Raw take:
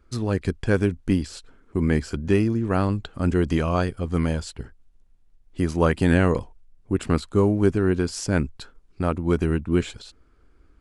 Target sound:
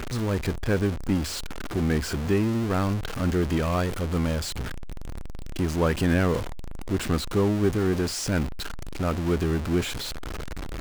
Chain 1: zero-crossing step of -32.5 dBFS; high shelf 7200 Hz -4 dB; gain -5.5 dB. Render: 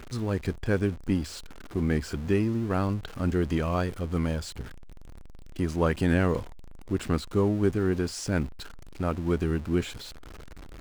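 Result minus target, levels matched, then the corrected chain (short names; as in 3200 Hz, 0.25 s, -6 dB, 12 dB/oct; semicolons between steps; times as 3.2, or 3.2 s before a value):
zero-crossing step: distortion -10 dB
zero-crossing step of -21 dBFS; high shelf 7200 Hz -4 dB; gain -5.5 dB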